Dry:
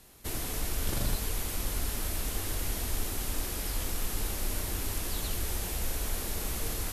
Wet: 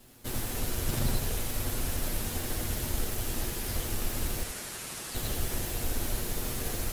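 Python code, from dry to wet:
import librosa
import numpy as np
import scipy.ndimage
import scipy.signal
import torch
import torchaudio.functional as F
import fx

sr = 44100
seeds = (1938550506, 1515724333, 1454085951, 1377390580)

p1 = fx.lower_of_two(x, sr, delay_ms=8.3)
p2 = fx.cheby1_bandpass(p1, sr, low_hz=1100.0, high_hz=9600.0, order=2, at=(4.43, 5.15))
p3 = fx.sample_hold(p2, sr, seeds[0], rate_hz=1200.0, jitter_pct=0)
p4 = p2 + (p3 * 10.0 ** (-6.5 / 20.0))
y = p4 + 10.0 ** (-7.5 / 20.0) * np.pad(p4, (int(83 * sr / 1000.0), 0))[:len(p4)]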